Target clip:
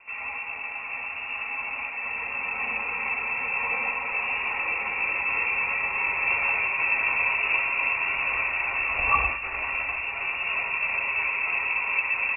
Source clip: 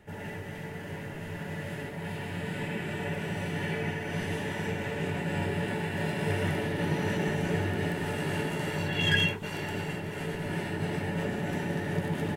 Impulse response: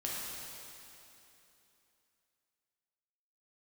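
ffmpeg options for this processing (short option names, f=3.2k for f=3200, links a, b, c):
-filter_complex "[0:a]asplit=2[a][b];[b]asubboost=boost=8.5:cutoff=56[c];[1:a]atrim=start_sample=2205[d];[c][d]afir=irnorm=-1:irlink=0,volume=-12.5dB[e];[a][e]amix=inputs=2:normalize=0,lowpass=f=2.4k:t=q:w=0.5098,lowpass=f=2.4k:t=q:w=0.6013,lowpass=f=2.4k:t=q:w=0.9,lowpass=f=2.4k:t=q:w=2.563,afreqshift=-2800,volume=3.5dB"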